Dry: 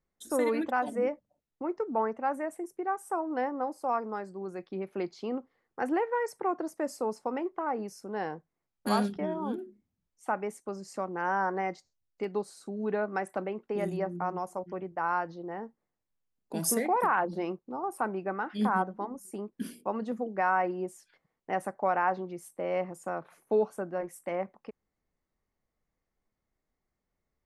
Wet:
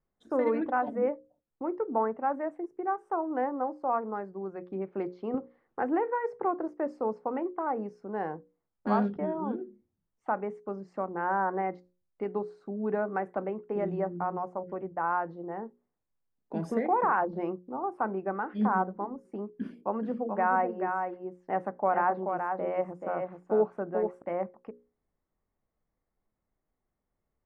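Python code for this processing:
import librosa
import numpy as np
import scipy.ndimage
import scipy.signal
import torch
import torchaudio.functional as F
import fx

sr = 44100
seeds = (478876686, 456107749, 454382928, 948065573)

y = fx.band_squash(x, sr, depth_pct=40, at=(5.34, 6.45))
y = fx.echo_single(y, sr, ms=432, db=-5.5, at=(19.48, 24.22))
y = scipy.signal.sosfilt(scipy.signal.butter(2, 1500.0, 'lowpass', fs=sr, output='sos'), y)
y = fx.hum_notches(y, sr, base_hz=60, count=9)
y = y * librosa.db_to_amplitude(1.5)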